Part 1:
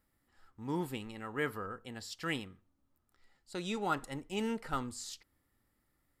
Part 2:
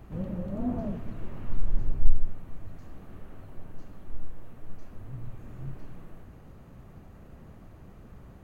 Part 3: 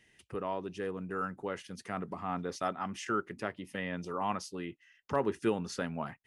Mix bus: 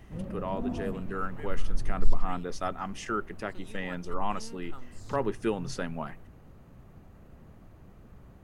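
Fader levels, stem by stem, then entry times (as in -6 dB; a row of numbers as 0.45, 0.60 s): -13.5, -3.0, +1.0 dB; 0.00, 0.00, 0.00 s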